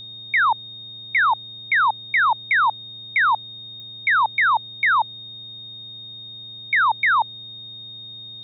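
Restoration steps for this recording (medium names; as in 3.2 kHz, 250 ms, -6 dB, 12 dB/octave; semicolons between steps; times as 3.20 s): de-click; de-hum 113 Hz, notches 13; band-stop 3.7 kHz, Q 30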